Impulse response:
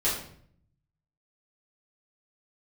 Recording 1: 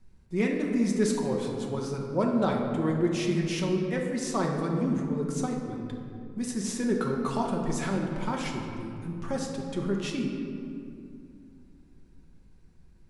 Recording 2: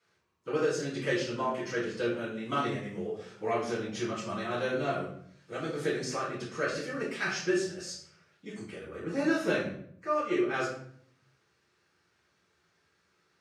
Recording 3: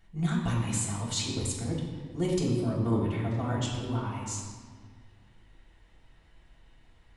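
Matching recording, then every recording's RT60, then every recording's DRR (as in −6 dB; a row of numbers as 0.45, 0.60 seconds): 2; 2.5, 0.60, 1.7 seconds; −0.5, −9.5, −4.0 decibels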